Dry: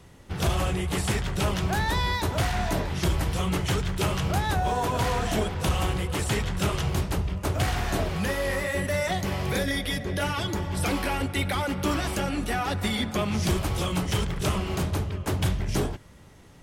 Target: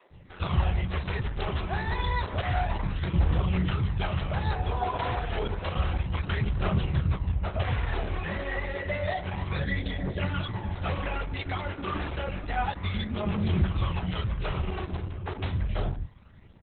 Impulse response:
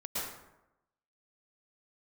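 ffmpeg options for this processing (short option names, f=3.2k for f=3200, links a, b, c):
-filter_complex "[0:a]lowpass=3.3k,bandreject=f=147.5:t=h:w=4,bandreject=f=295:t=h:w=4,bandreject=f=442.5:t=h:w=4,bandreject=f=590:t=h:w=4,bandreject=f=737.5:t=h:w=4,bandreject=f=885:t=h:w=4,bandreject=f=1.0325k:t=h:w=4,bandreject=f=1.18k:t=h:w=4,bandreject=f=1.3275k:t=h:w=4,bandreject=f=1.475k:t=h:w=4,bandreject=f=1.6225k:t=h:w=4,adynamicequalizer=threshold=0.01:dfrequency=270:dqfactor=1.9:tfrequency=270:tqfactor=1.9:attack=5:release=100:ratio=0.375:range=1.5:mode=cutabove:tftype=bell,acrossover=split=230|910|2100[a][b][c][d];[d]acrusher=bits=5:mode=log:mix=0:aa=0.000001[e];[a][b][c][e]amix=inputs=4:normalize=0,aphaser=in_gain=1:out_gain=1:delay=3:decay=0.46:speed=0.3:type=triangular,acrossover=split=340[f][g];[f]adelay=100[h];[h][g]amix=inputs=2:normalize=0,volume=-2dB" -ar 48000 -c:a libopus -b:a 8k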